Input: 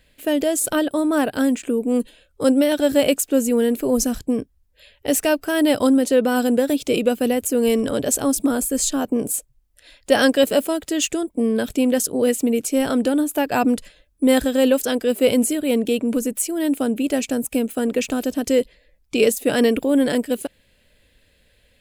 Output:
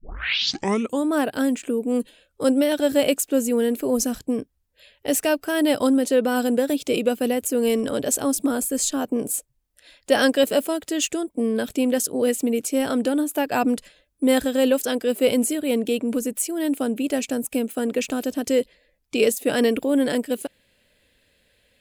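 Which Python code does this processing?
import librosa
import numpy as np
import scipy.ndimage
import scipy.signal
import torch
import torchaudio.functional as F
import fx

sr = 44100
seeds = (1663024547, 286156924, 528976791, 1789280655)

y = fx.tape_start_head(x, sr, length_s=1.07)
y = fx.low_shelf(y, sr, hz=79.0, db=-11.5)
y = y * 10.0 ** (-2.0 / 20.0)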